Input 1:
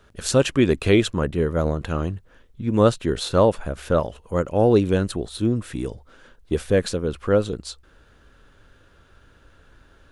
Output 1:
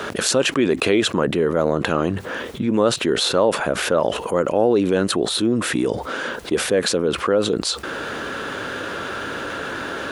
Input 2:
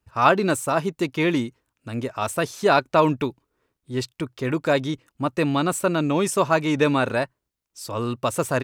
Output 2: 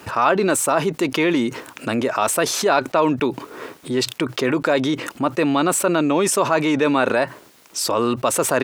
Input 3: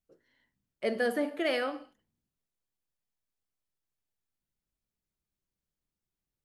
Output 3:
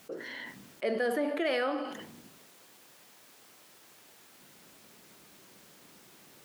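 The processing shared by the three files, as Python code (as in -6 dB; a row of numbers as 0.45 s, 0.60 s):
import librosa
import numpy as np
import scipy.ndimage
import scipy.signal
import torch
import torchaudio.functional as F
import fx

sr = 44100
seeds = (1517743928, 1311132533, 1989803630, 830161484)

y = scipy.signal.sosfilt(scipy.signal.butter(2, 250.0, 'highpass', fs=sr, output='sos'), x)
y = fx.high_shelf(y, sr, hz=4500.0, db=-5.5)
y = fx.env_flatten(y, sr, amount_pct=70)
y = y * 10.0 ** (-1.5 / 20.0)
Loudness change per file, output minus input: +1.0 LU, +3.5 LU, -1.5 LU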